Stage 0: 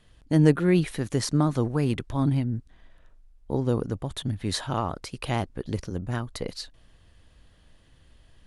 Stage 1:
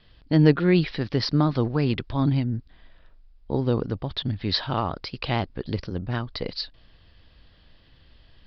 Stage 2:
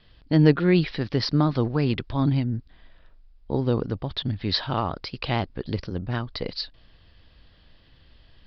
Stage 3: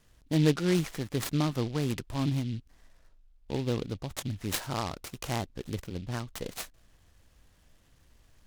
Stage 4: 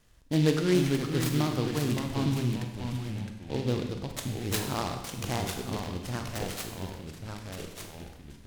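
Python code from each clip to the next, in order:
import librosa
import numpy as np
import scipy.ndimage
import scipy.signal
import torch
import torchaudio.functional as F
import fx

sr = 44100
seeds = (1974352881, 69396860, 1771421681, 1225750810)

y1 = scipy.signal.sosfilt(scipy.signal.butter(16, 5100.0, 'lowpass', fs=sr, output='sos'), x)
y1 = fx.high_shelf(y1, sr, hz=4000.0, db=10.0)
y1 = y1 * 10.0 ** (1.5 / 20.0)
y2 = y1
y3 = fx.noise_mod_delay(y2, sr, seeds[0], noise_hz=3100.0, depth_ms=0.073)
y3 = y3 * 10.0 ** (-7.0 / 20.0)
y4 = fx.echo_pitch(y3, sr, ms=391, semitones=-2, count=3, db_per_echo=-6.0)
y4 = fx.rev_schroeder(y4, sr, rt60_s=1.0, comb_ms=32, drr_db=5.0)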